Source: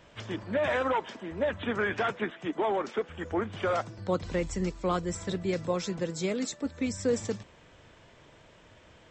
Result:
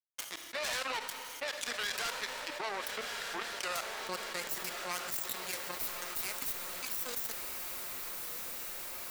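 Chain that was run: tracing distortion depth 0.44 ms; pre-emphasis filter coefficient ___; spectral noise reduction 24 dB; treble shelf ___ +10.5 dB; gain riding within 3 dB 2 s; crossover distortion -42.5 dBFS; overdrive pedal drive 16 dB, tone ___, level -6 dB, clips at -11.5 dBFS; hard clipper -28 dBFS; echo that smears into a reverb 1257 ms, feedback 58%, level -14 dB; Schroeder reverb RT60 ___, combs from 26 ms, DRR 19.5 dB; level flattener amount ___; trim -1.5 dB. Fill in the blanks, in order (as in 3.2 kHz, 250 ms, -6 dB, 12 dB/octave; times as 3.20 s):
0.9, 7.2 kHz, 2.7 kHz, 1.1 s, 70%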